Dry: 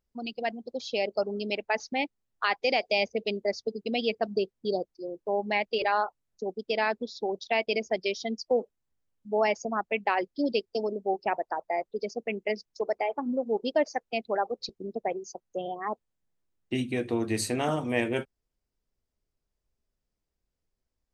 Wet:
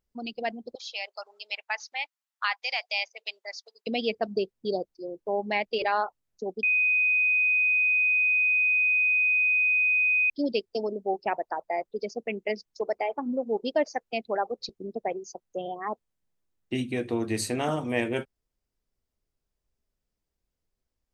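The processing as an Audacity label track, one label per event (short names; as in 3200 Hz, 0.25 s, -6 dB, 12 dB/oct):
0.750000	3.870000	HPF 910 Hz 24 dB/oct
6.630000	10.300000	bleep 2500 Hz -20 dBFS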